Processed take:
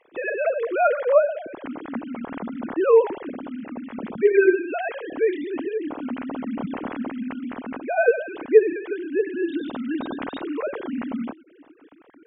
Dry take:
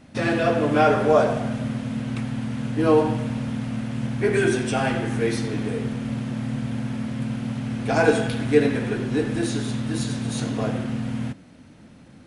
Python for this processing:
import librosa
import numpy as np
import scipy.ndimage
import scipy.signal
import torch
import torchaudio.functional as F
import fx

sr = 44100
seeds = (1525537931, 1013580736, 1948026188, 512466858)

y = fx.sine_speech(x, sr)
y = fx.rider(y, sr, range_db=5, speed_s=2.0)
y = y * librosa.db_to_amplitude(-2.0)